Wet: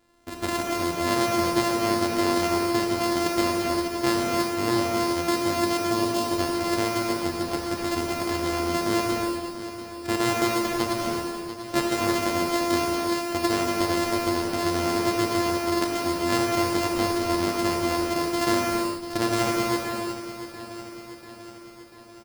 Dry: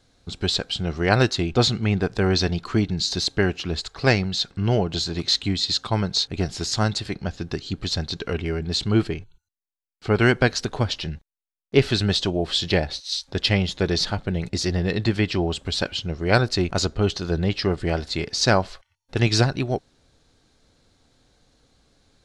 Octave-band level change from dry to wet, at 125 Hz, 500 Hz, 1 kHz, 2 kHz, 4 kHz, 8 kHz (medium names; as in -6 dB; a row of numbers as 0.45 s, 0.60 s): -12.0 dB, -0.5 dB, +5.5 dB, -2.5 dB, -6.5 dB, +1.0 dB